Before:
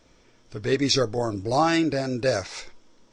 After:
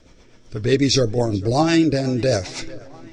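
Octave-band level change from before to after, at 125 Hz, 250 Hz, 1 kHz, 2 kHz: +9.0, +6.5, -0.5, +1.5 dB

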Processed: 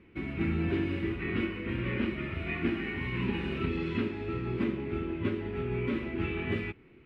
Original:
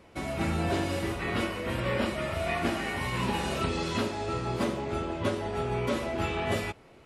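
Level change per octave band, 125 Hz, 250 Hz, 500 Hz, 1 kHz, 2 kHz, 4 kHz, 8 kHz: -1.0 dB, +1.0 dB, -4.0 dB, -11.5 dB, -2.5 dB, -8.0 dB, under -25 dB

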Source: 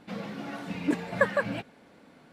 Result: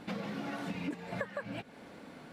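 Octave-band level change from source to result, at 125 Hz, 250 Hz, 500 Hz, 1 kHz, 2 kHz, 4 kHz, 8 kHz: -4.5, -6.5, -10.5, -7.5, -11.0, -4.0, -6.0 dB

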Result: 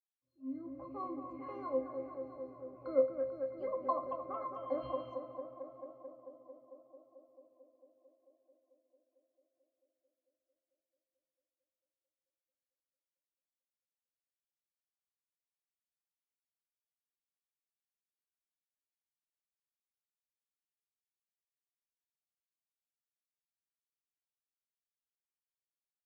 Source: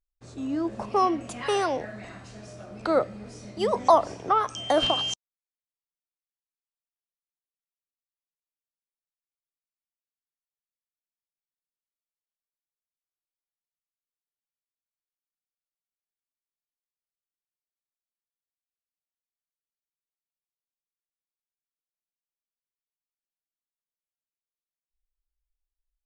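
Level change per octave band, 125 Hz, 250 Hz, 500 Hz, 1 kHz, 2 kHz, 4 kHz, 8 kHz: -17.0 dB, -12.5 dB, -9.5 dB, -16.5 dB, under -20 dB, under -35 dB, under -30 dB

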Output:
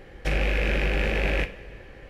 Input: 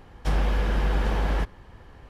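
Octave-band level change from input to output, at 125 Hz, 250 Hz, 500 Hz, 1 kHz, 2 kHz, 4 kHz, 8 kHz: -2.0 dB, +0.5 dB, +4.0 dB, -4.0 dB, +8.0 dB, +5.0 dB, n/a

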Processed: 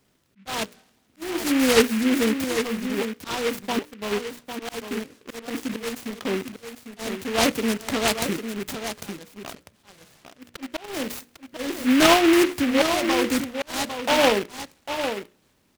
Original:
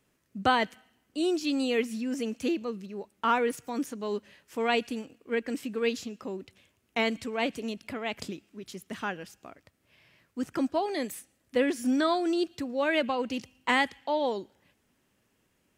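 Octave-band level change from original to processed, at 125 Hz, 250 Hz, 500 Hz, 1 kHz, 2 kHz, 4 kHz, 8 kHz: +9.0, +7.0, +5.5, +3.5, +5.5, +9.5, +15.0 dB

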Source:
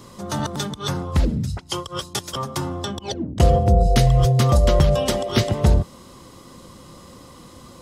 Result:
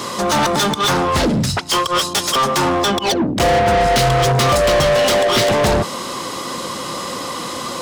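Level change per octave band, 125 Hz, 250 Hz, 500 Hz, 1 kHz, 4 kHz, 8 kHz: -3.0, +5.0, +8.0, +11.0, +11.0, +10.5 dB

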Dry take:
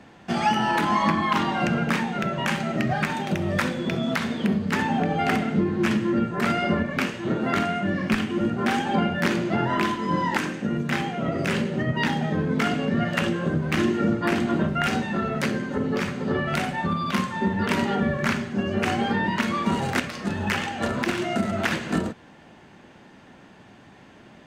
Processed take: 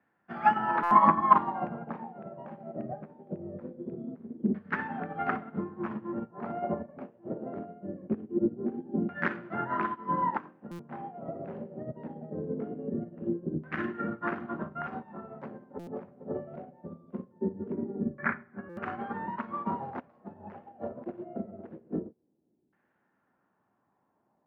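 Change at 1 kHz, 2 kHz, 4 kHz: -3.5 dB, -12.0 dB, under -25 dB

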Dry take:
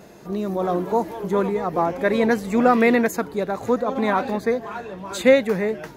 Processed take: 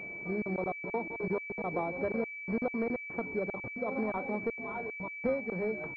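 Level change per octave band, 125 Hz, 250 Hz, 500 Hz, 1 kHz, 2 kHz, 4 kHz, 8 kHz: -10.5 dB, -14.0 dB, -14.0 dB, -16.0 dB, -9.0 dB, under -30 dB, under -35 dB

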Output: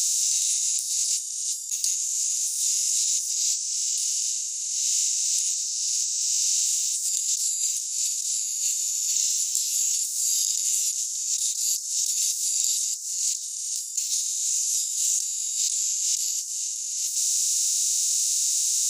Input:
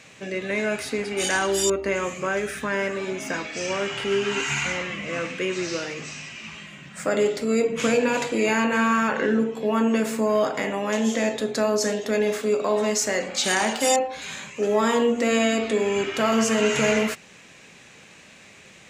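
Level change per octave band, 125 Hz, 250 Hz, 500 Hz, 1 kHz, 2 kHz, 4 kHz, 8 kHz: under -40 dB, under -40 dB, under -40 dB, under -40 dB, -23.0 dB, +3.0 dB, +13.0 dB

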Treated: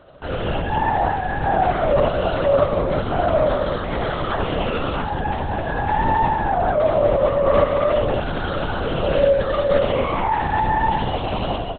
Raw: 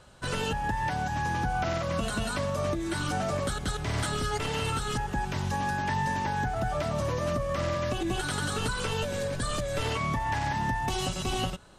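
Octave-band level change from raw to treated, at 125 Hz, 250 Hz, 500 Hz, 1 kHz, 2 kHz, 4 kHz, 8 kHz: +5.0 dB, +7.0 dB, +14.5 dB, +10.5 dB, +5.0 dB, +2.5 dB, under -40 dB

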